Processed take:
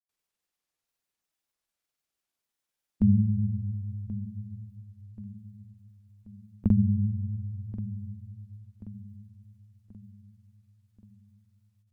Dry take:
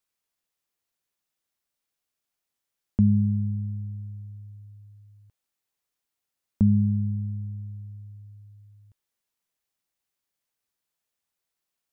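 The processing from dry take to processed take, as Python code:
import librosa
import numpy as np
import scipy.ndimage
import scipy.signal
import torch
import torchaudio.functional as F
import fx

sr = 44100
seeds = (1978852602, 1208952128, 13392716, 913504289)

p1 = fx.granulator(x, sr, seeds[0], grain_ms=100.0, per_s=20.0, spray_ms=100.0, spread_st=0)
y = p1 + fx.echo_feedback(p1, sr, ms=1082, feedback_pct=48, wet_db=-15.0, dry=0)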